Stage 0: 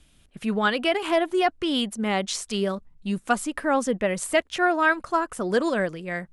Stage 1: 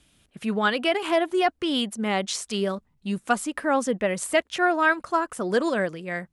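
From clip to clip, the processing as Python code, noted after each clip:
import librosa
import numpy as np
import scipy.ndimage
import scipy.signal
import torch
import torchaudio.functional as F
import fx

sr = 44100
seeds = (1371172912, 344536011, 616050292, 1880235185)

y = fx.highpass(x, sr, hz=98.0, slope=6)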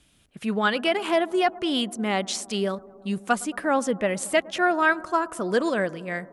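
y = fx.echo_bbd(x, sr, ms=111, stages=1024, feedback_pct=80, wet_db=-22.0)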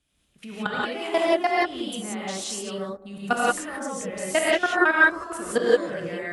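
y = fx.level_steps(x, sr, step_db=19)
y = fx.rev_gated(y, sr, seeds[0], gate_ms=200, shape='rising', drr_db=-6.0)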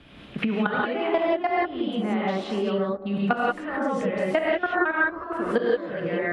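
y = fx.air_absorb(x, sr, metres=390.0)
y = fx.band_squash(y, sr, depth_pct=100)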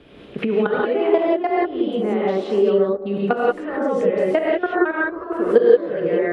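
y = fx.peak_eq(x, sr, hz=430.0, db=13.5, octaves=0.86)
y = y * librosa.db_to_amplitude(-1.0)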